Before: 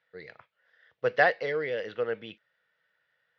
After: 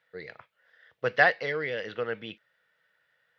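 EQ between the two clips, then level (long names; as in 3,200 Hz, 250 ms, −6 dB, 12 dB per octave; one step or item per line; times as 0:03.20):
dynamic equaliser 490 Hz, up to −6 dB, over −38 dBFS, Q 1
+3.5 dB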